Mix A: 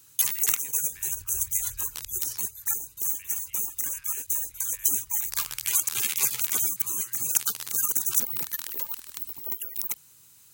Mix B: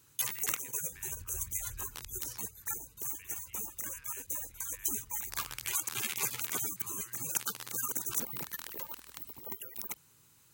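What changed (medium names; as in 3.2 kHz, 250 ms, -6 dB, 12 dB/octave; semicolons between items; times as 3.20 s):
second sound: remove brick-wall FIR band-stop 180–1200 Hz; master: add treble shelf 2.9 kHz -10.5 dB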